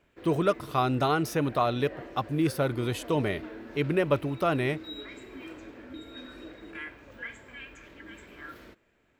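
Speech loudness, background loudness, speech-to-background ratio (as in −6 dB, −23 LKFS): −28.5 LKFS, −44.0 LKFS, 15.5 dB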